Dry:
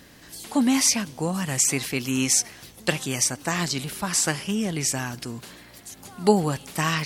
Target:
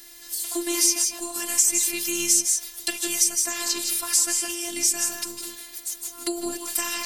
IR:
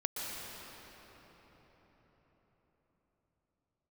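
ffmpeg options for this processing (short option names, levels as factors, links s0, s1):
-filter_complex "[1:a]atrim=start_sample=2205,atrim=end_sample=6174,asetrate=33957,aresample=44100[s0];[0:a][s0]afir=irnorm=-1:irlink=0,acrossover=split=350[s1][s2];[s2]acompressor=threshold=0.0398:ratio=3[s3];[s1][s3]amix=inputs=2:normalize=0,afftfilt=real='hypot(re,im)*cos(PI*b)':imag='0':win_size=512:overlap=0.75,crystalizer=i=6:c=0,volume=0.668"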